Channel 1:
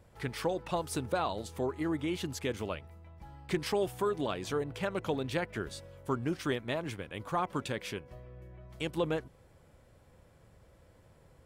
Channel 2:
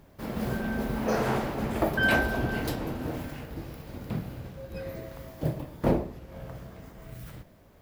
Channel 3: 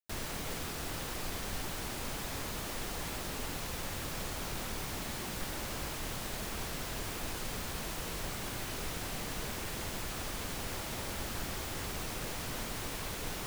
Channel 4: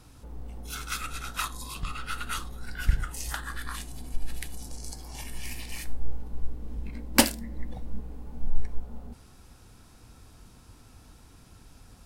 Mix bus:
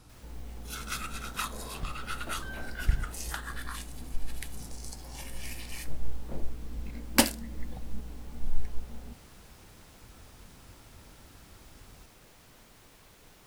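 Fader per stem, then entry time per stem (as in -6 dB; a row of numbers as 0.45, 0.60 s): off, -19.5 dB, -17.5 dB, -2.5 dB; off, 0.45 s, 0.00 s, 0.00 s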